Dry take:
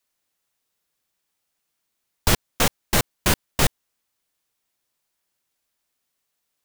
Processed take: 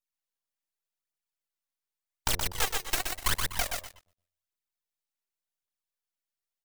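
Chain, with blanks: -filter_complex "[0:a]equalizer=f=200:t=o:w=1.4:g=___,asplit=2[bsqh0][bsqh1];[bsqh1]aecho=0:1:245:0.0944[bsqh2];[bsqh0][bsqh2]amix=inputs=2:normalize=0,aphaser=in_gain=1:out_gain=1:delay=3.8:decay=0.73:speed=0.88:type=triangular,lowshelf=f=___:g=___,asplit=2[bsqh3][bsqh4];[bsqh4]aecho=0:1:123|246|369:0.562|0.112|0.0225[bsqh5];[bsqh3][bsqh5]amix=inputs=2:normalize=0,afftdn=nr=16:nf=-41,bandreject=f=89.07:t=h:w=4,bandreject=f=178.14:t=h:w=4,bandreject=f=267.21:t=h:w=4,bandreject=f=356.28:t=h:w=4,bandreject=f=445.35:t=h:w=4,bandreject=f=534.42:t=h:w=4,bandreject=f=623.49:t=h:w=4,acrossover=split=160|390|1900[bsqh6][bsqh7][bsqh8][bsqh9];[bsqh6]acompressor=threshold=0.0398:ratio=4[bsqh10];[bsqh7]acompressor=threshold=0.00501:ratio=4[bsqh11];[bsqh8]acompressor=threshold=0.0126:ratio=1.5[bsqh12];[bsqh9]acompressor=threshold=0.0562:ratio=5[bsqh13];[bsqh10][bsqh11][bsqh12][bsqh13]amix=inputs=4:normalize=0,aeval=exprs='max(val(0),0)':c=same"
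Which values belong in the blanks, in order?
-13, 79, -11.5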